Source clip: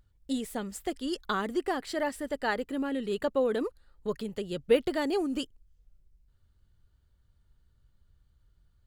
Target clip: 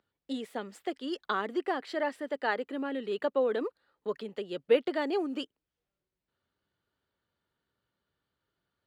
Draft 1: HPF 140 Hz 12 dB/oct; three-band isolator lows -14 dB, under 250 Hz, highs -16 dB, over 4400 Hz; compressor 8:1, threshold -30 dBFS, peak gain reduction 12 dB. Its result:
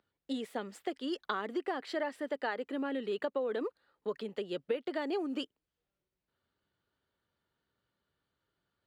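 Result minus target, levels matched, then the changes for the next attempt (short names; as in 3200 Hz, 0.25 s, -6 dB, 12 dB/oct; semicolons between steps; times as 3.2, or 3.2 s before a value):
compressor: peak gain reduction +12 dB
remove: compressor 8:1, threshold -30 dBFS, peak gain reduction 12 dB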